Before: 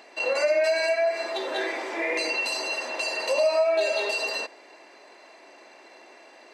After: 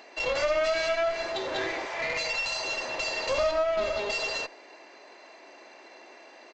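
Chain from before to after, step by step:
0:01.85–0:02.65: high-pass filter 530 Hz 24 dB per octave
0:03.51–0:04.10: high-shelf EQ 2,000 Hz −8 dB
asymmetric clip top −32 dBFS
downsampling to 16,000 Hz

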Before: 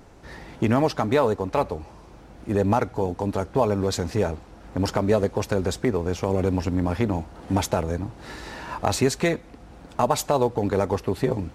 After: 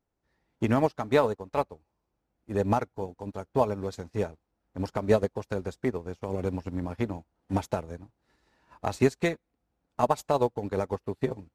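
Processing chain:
expander for the loud parts 2.5 to 1, over −39 dBFS

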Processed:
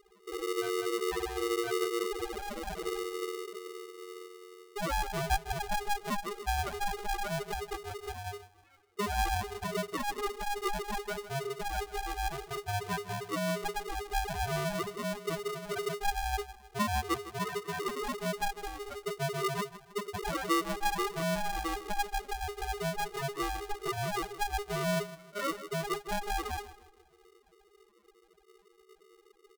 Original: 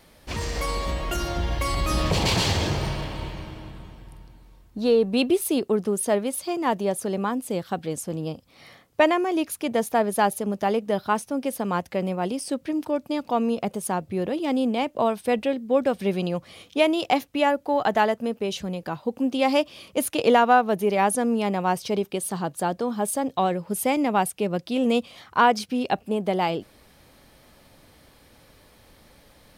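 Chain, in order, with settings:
lower of the sound and its delayed copy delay 2.8 ms
low-pass filter 1,800 Hz 24 dB per octave
comb filter 5.1 ms, depth 56%
downward compressor 3 to 1, threshold −27 dBFS, peak gain reduction 10.5 dB
spectral peaks only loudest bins 2
feedback echo with a high-pass in the loop 156 ms, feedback 41%, high-pass 150 Hz, level −14.5 dB
ring modulator with a square carrier 410 Hz

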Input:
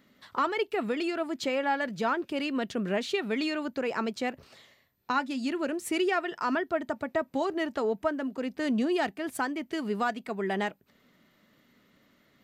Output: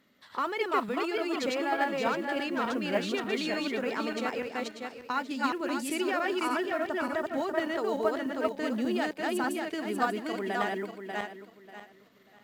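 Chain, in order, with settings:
feedback delay that plays each chunk backwards 295 ms, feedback 49%, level −0.5 dB
low-shelf EQ 170 Hz −7 dB
noise that follows the level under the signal 33 dB
in parallel at −3 dB: output level in coarse steps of 12 dB
on the sum: level −5 dB
AC-3 320 kbit/s 48,000 Hz

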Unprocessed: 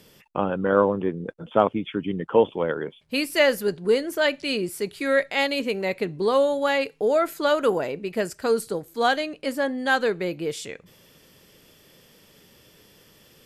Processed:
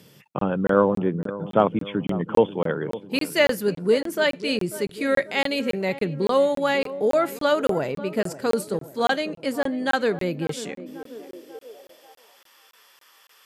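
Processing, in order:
feedback echo with a low-pass in the loop 541 ms, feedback 59%, low-pass 1,100 Hz, level −14 dB
high-pass filter sweep 130 Hz → 1,100 Hz, 0:10.35–0:12.52
regular buffer underruns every 0.28 s, samples 1,024, zero, from 0:00.39

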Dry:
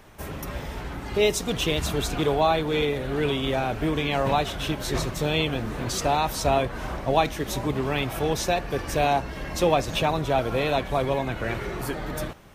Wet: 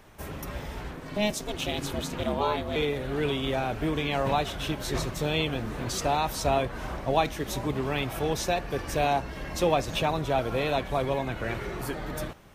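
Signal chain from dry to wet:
0:00.91–0:02.76: ring modulation 210 Hz
level −3 dB

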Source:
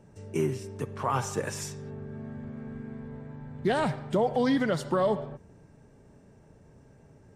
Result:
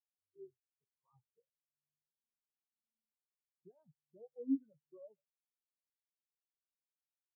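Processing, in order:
flanger 0.33 Hz, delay 8.9 ms, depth 6.2 ms, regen +63%
every bin expanded away from the loudest bin 4 to 1
level −6 dB

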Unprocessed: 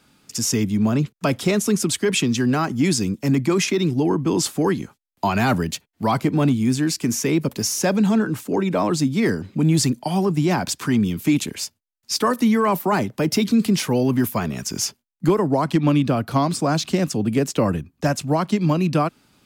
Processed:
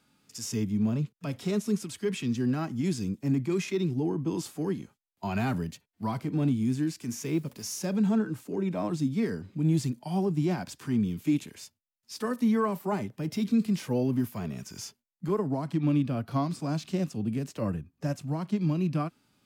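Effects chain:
0:07.10–0:07.86: noise that follows the level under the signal 32 dB
harmonic and percussive parts rebalanced percussive −12 dB
level −7 dB

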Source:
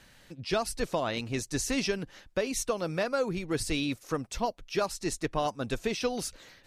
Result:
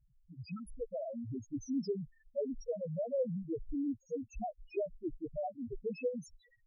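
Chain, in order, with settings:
time-frequency box erased 0:00.41–0:00.74, 360–1,200 Hz
parametric band 1,100 Hz −6 dB 0.53 octaves
spectral peaks only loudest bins 1
level +2 dB

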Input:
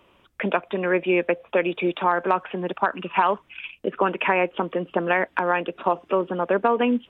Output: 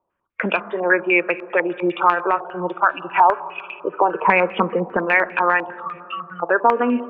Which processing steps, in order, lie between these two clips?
0:04.13–0:04.97: hollow resonant body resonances 220/460 Hz, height 12 dB, ringing for 60 ms
noise reduction from a noise print of the clip's start 23 dB
in parallel at 0 dB: brickwall limiter −14.5 dBFS, peak gain reduction 8.5 dB
0:05.66–0:06.43: on the sum: time-frequency box erased 200–1,100 Hz
hard clipping −6.5 dBFS, distortion −27 dB
on a send at −13 dB: convolution reverb RT60 3.0 s, pre-delay 6 ms
on the sum: low-pass on a step sequencer 10 Hz 850–2,600 Hz
level −4.5 dB

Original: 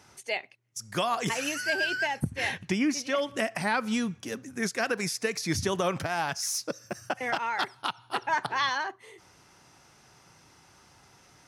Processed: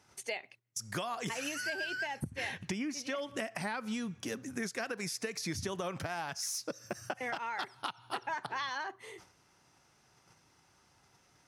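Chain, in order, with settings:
noise gate −55 dBFS, range −11 dB
downward compressor, threshold −36 dBFS, peak gain reduction 13 dB
level +1.5 dB

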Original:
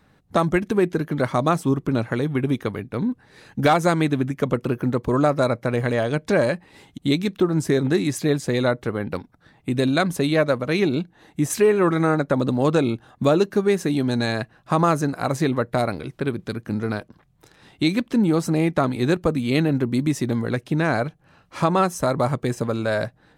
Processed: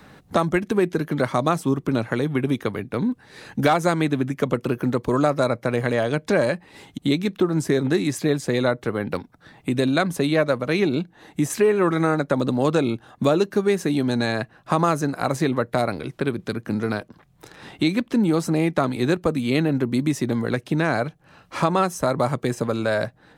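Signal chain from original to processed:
low-shelf EQ 120 Hz −5 dB
multiband upward and downward compressor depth 40%

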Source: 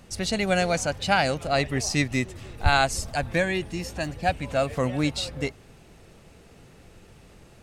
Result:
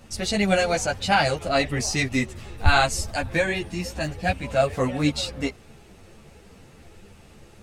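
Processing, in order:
string-ensemble chorus
level +5 dB

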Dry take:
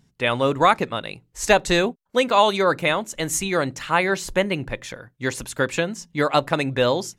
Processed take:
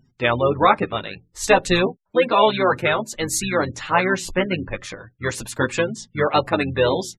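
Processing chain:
pitch-shifted copies added −7 semitones −9 dB
flanger 0.34 Hz, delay 7.8 ms, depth 3.8 ms, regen −9%
gate on every frequency bin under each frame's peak −25 dB strong
level +4 dB

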